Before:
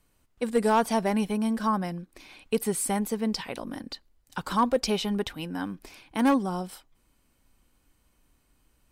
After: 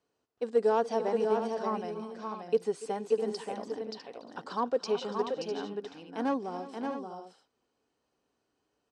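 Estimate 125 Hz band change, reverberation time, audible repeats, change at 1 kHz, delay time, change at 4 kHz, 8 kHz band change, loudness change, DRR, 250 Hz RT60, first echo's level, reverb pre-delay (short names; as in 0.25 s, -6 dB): -12.5 dB, none, 4, -5.0 dB, 0.287 s, -8.5 dB, -16.5 dB, -4.5 dB, none, none, -17.0 dB, none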